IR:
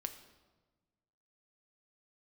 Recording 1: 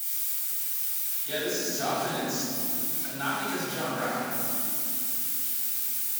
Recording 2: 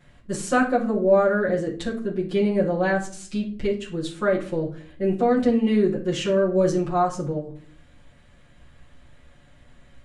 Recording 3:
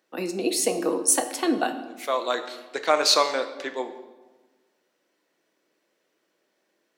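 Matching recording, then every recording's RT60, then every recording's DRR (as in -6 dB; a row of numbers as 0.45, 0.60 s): 3; 2.7, 0.50, 1.3 s; -9.5, -7.0, 7.0 dB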